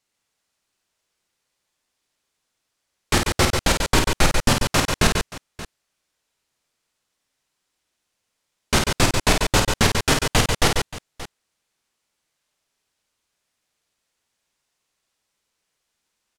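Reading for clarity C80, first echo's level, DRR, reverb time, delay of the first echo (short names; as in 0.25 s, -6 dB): none, -5.5 dB, none, none, 52 ms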